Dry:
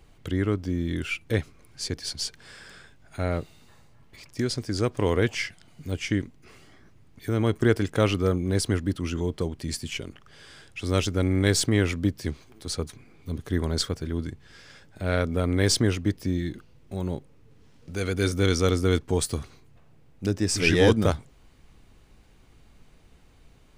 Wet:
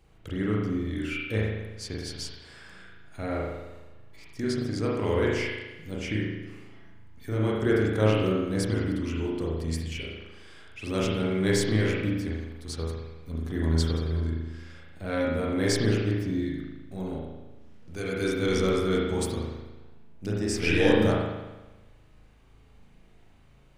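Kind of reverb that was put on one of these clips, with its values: spring tank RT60 1.1 s, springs 37 ms, chirp 60 ms, DRR -4.5 dB; trim -7 dB

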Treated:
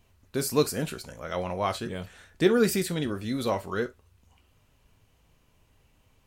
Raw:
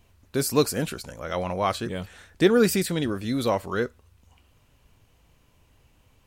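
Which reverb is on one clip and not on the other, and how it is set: gated-style reverb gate 90 ms falling, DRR 9.5 dB; trim -3.5 dB

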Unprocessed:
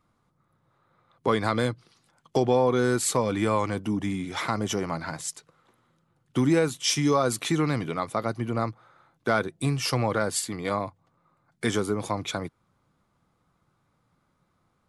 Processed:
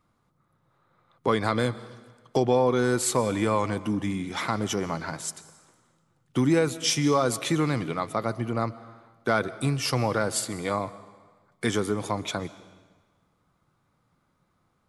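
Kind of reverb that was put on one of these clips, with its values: algorithmic reverb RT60 1.4 s, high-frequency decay 0.95×, pre-delay 90 ms, DRR 16.5 dB

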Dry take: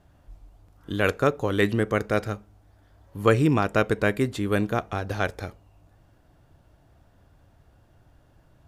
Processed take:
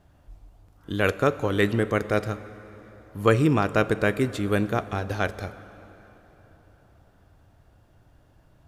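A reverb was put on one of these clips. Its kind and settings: plate-style reverb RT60 4.2 s, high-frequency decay 0.7×, DRR 14.5 dB

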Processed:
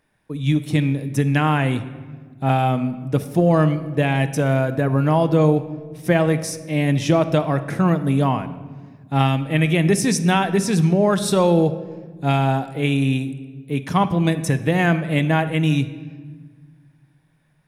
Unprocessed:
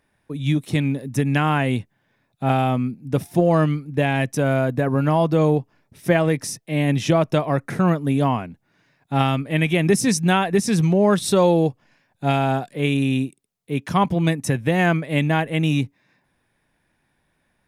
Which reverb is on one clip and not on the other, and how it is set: simulated room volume 1500 m³, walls mixed, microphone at 0.54 m

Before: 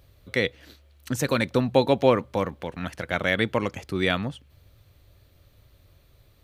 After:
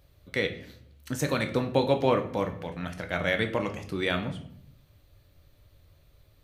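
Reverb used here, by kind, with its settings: simulated room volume 110 m³, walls mixed, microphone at 0.45 m; trim -4.5 dB

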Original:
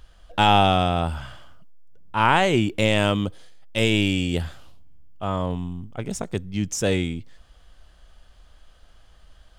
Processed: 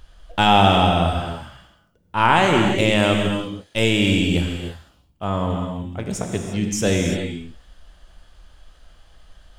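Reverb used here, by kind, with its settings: gated-style reverb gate 370 ms flat, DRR 2.5 dB; trim +1.5 dB

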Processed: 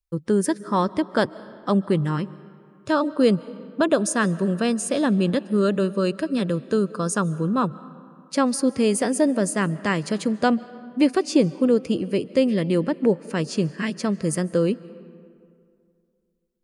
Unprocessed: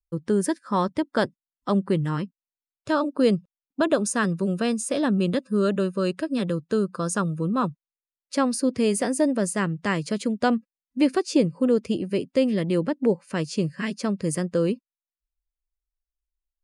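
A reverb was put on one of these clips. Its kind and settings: algorithmic reverb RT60 2.4 s, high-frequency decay 0.55×, pre-delay 105 ms, DRR 18.5 dB; trim +2 dB

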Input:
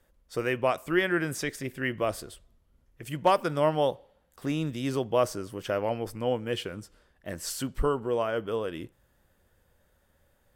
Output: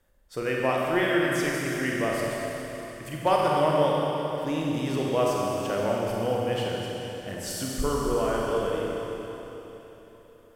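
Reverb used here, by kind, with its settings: Schroeder reverb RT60 3.7 s, combs from 31 ms, DRR -3.5 dB; trim -2 dB

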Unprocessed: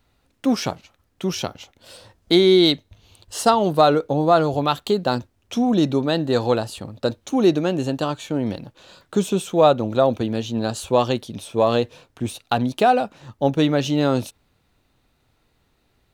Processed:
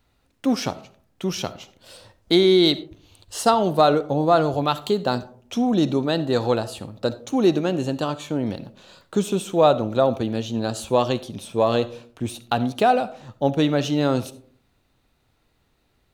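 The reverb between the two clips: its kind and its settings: algorithmic reverb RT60 0.53 s, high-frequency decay 0.35×, pre-delay 25 ms, DRR 15.5 dB; trim -1.5 dB

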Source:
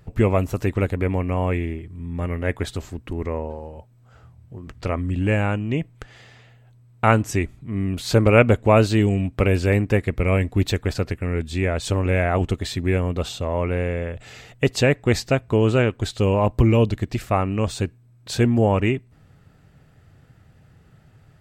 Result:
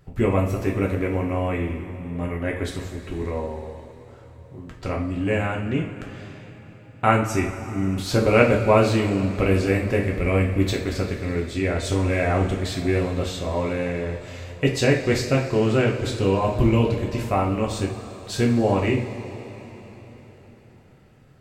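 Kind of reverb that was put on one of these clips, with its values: two-slope reverb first 0.4 s, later 4.4 s, from -17 dB, DRR -1.5 dB; trim -4.5 dB

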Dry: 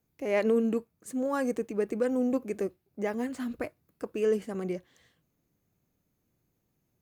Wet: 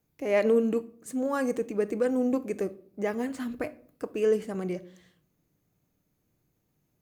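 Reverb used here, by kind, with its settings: simulated room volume 620 m³, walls furnished, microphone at 0.48 m; trim +1.5 dB

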